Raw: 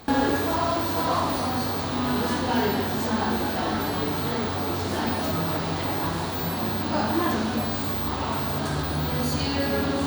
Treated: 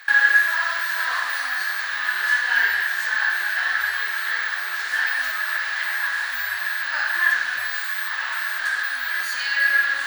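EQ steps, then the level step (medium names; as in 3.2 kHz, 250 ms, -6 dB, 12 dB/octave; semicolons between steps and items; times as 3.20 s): resonant high-pass 1.7 kHz, resonance Q 11; 0.0 dB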